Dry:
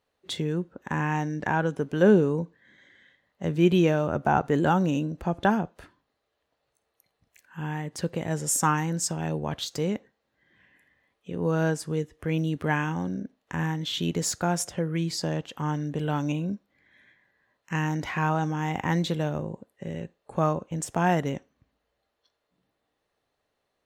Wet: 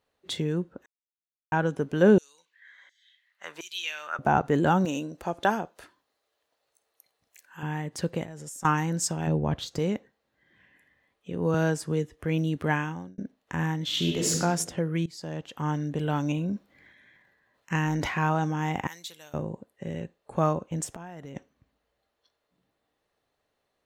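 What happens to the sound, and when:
0.86–1.52 mute
2.18–4.19 LFO high-pass saw down 1.4 Hz 850–6200 Hz
4.85–7.63 tone controls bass -12 dB, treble +6 dB
8.23–8.65 compressor 20:1, threshold -37 dBFS
9.27–9.79 tilt -2 dB/oct
11.54–12.15 three-band squash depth 40%
12.71–13.18 fade out
13.84–14.33 reverb throw, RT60 1.2 s, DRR -1 dB
15.06–15.67 fade in, from -20 dB
16.37–18.14 transient shaper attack +2 dB, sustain +8 dB
18.87–19.34 differentiator
20.86–21.36 compressor 16:1, threshold -37 dBFS

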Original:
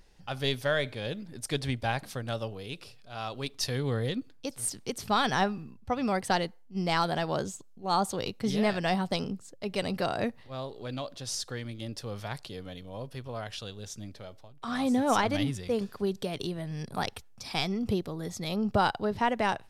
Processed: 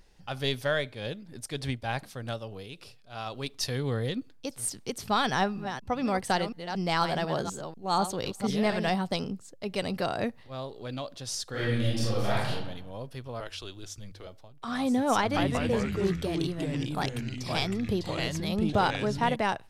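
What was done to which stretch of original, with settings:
0.76–3.26 tremolo 3.3 Hz, depth 45%
5.31–8.9 reverse delay 0.243 s, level -8.5 dB
11.5–12.5 reverb throw, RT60 0.95 s, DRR -9 dB
13.4–14.27 frequency shift -100 Hz
15.18–19.36 echoes that change speed 0.181 s, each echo -3 st, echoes 3

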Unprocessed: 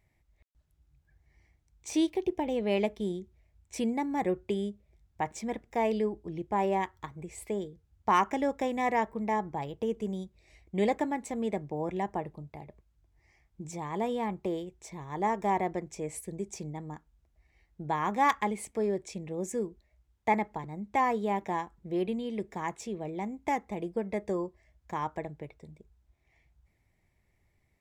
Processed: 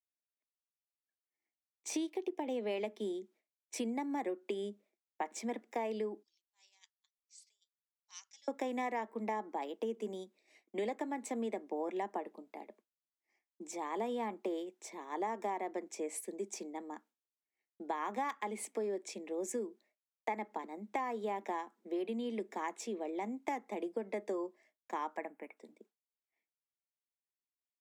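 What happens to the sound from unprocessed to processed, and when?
6.23–8.48 Butterworth band-pass 5200 Hz, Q 2.2
25.17–25.57 EQ curve 260 Hz 0 dB, 380 Hz -7 dB, 880 Hz +2 dB, 2500 Hz +3 dB, 3900 Hz -21 dB, 10000 Hz +2 dB
whole clip: steep high-pass 220 Hz 72 dB/oct; expander -58 dBFS; compressor 12:1, threshold -32 dBFS; gain -1 dB

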